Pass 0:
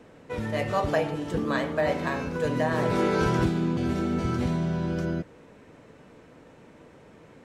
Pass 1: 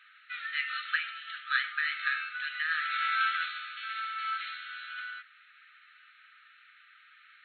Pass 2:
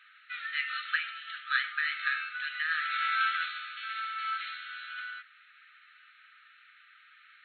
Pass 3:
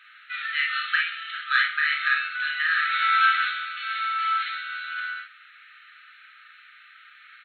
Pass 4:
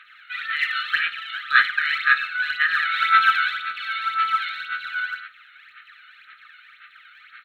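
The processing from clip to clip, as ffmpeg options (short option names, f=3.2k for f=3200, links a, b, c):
-af "afftfilt=real='re*between(b*sr/4096,1200,4300)':imag='im*between(b*sr/4096,1200,4300)':win_size=4096:overlap=0.75,volume=4.5dB"
-af anull
-af "acontrast=38,aecho=1:1:35|53:0.562|0.631"
-af "aphaser=in_gain=1:out_gain=1:delay=1.4:decay=0.61:speed=1.9:type=sinusoidal"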